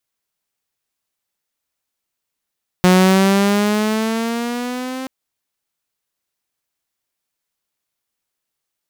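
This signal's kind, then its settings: gliding synth tone saw, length 2.23 s, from 181 Hz, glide +6.5 st, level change -16.5 dB, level -5.5 dB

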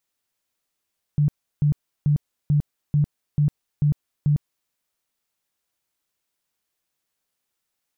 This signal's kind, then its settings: tone bursts 147 Hz, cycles 15, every 0.44 s, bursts 8, -15 dBFS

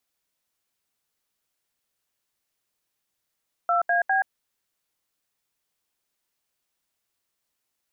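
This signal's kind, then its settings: DTMF "2AB", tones 127 ms, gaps 75 ms, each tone -21.5 dBFS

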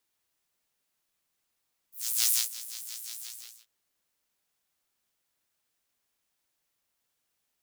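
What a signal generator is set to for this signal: synth patch with filter wobble A#2, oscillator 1 saw, noise -15 dB, filter highpass, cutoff 5.2 kHz, Q 1.5, filter envelope 1 oct, attack 401 ms, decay 0.17 s, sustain -17 dB, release 0.47 s, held 1.27 s, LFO 5.7 Hz, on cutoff 0.6 oct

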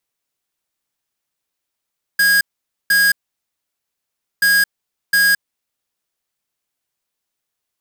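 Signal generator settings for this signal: beep pattern square 1.64 kHz, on 0.22 s, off 0.49 s, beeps 2, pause 1.30 s, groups 2, -13 dBFS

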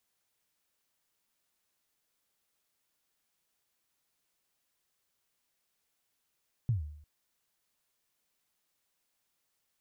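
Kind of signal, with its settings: kick drum length 0.35 s, from 130 Hz, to 75 Hz, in 131 ms, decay 0.67 s, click off, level -23 dB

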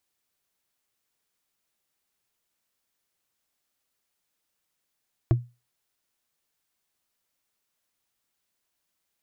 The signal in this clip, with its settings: wood hit, lowest mode 121 Hz, decay 0.27 s, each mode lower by 6 dB, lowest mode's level -13 dB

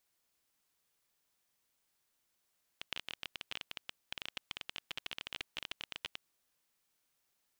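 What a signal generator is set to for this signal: random clicks 20 per s -22.5 dBFS 3.41 s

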